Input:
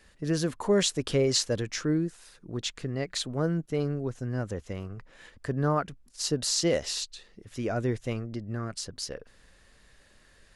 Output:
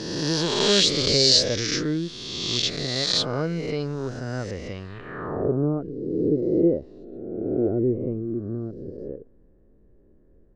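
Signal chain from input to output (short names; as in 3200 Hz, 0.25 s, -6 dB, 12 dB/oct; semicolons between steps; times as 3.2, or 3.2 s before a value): spectral swells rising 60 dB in 1.71 s; low-pass sweep 4800 Hz -> 360 Hz, 4.86–5.57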